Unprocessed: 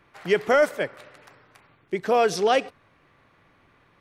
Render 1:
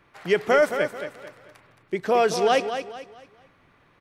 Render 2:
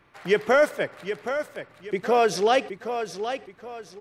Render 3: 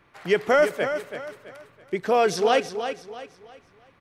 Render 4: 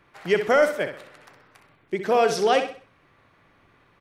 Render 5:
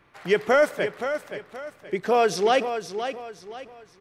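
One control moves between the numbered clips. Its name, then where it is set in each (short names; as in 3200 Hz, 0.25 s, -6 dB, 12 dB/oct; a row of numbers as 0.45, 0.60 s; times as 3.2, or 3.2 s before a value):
feedback echo, time: 220, 772, 330, 64, 523 ms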